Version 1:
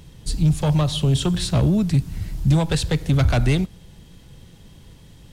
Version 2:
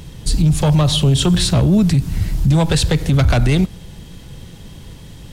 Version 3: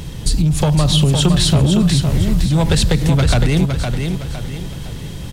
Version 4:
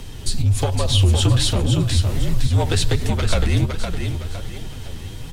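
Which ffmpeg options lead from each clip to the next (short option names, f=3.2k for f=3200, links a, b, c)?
-af "alimiter=level_in=15.5dB:limit=-1dB:release=50:level=0:latency=1,volume=-6dB"
-filter_complex "[0:a]acompressor=threshold=-18dB:ratio=6,asplit=2[a][b];[b]aecho=0:1:511|1022|1533|2044|2555:0.531|0.207|0.0807|0.0315|0.0123[c];[a][c]amix=inputs=2:normalize=0,volume=6dB"
-af "afreqshift=-54,flanger=delay=4.1:depth=9.3:regen=32:speed=1.3:shape=triangular"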